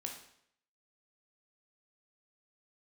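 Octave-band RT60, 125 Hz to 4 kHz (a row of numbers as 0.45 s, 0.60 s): 0.65 s, 0.65 s, 0.70 s, 0.65 s, 0.65 s, 0.65 s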